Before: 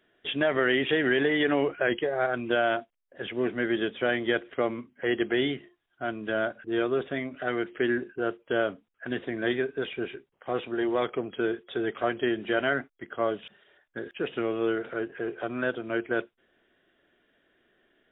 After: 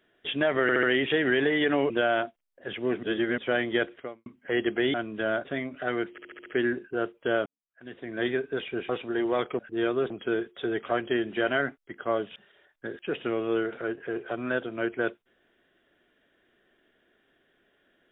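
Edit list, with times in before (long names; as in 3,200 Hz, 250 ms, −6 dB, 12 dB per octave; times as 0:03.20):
0:00.62: stutter 0.07 s, 4 plays
0:01.69–0:02.44: remove
0:03.57–0:03.92: reverse
0:04.45–0:04.80: fade out quadratic
0:05.48–0:06.03: remove
0:06.54–0:07.05: move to 0:11.22
0:07.71: stutter 0.07 s, 6 plays
0:08.71–0:09.54: fade in quadratic
0:10.14–0:10.52: remove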